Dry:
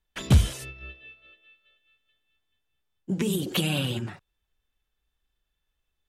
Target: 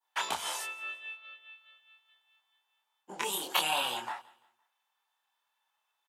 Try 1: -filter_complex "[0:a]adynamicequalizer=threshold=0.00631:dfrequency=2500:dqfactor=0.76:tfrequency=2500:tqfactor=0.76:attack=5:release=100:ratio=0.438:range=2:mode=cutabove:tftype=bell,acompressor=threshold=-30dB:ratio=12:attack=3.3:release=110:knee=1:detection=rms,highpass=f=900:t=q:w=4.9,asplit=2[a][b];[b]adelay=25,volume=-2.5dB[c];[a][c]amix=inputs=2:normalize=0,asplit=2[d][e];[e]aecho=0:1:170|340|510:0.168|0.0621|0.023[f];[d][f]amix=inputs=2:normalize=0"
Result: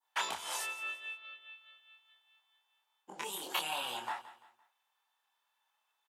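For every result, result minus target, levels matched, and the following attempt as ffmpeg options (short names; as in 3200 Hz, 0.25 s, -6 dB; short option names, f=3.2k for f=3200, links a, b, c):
compressor: peak gain reduction +7.5 dB; echo-to-direct +7 dB
-filter_complex "[0:a]adynamicequalizer=threshold=0.00631:dfrequency=2500:dqfactor=0.76:tfrequency=2500:tqfactor=0.76:attack=5:release=100:ratio=0.438:range=2:mode=cutabove:tftype=bell,acompressor=threshold=-22dB:ratio=12:attack=3.3:release=110:knee=1:detection=rms,highpass=f=900:t=q:w=4.9,asplit=2[a][b];[b]adelay=25,volume=-2.5dB[c];[a][c]amix=inputs=2:normalize=0,asplit=2[d][e];[e]aecho=0:1:170|340|510:0.168|0.0621|0.023[f];[d][f]amix=inputs=2:normalize=0"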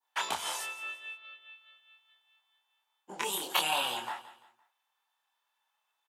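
echo-to-direct +7 dB
-filter_complex "[0:a]adynamicequalizer=threshold=0.00631:dfrequency=2500:dqfactor=0.76:tfrequency=2500:tqfactor=0.76:attack=5:release=100:ratio=0.438:range=2:mode=cutabove:tftype=bell,acompressor=threshold=-22dB:ratio=12:attack=3.3:release=110:knee=1:detection=rms,highpass=f=900:t=q:w=4.9,asplit=2[a][b];[b]adelay=25,volume=-2.5dB[c];[a][c]amix=inputs=2:normalize=0,asplit=2[d][e];[e]aecho=0:1:170|340|510:0.075|0.0277|0.0103[f];[d][f]amix=inputs=2:normalize=0"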